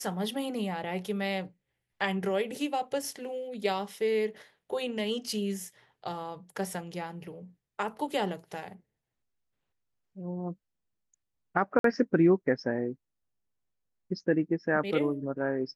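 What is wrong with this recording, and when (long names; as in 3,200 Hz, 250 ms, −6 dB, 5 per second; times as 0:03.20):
0:11.79–0:11.84: drop-out 53 ms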